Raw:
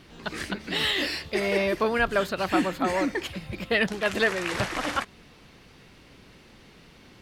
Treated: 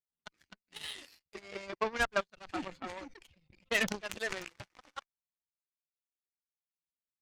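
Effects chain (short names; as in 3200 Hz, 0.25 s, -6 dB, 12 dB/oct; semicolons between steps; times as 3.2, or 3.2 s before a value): per-bin expansion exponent 1.5; LPF 6800 Hz 24 dB/oct; bell 2800 Hz +2.5 dB 2.3 oct; added harmonics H 6 -41 dB, 7 -17 dB, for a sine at -11.5 dBFS; chopper 0.59 Hz, depth 60%, duty 30%; 2.25–4.49 sustainer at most 66 dB/s; gain -5.5 dB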